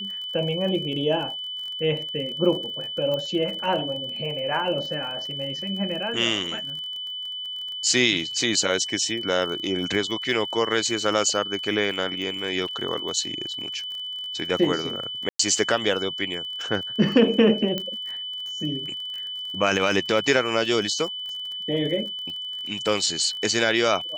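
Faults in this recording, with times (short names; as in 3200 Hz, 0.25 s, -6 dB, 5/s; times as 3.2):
crackle 35/s -33 dBFS
tone 3000 Hz -30 dBFS
3.14 pop -17 dBFS
12.68–12.69 gap 5.2 ms
15.29–15.39 gap 0.104 s
17.78 pop -13 dBFS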